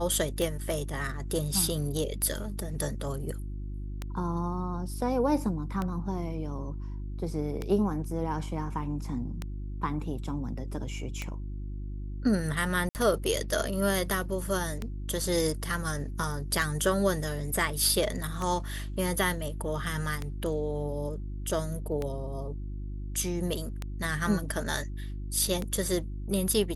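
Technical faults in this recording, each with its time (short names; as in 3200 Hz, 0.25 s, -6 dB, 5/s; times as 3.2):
hum 50 Hz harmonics 7 -36 dBFS
tick 33 1/3 rpm
12.89–12.95 gap 59 ms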